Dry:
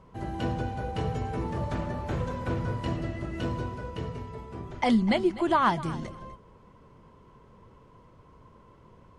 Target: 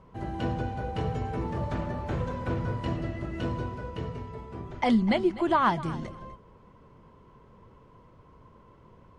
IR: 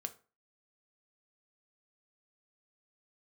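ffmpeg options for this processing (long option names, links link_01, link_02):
-af "highshelf=frequency=6500:gain=-8.5"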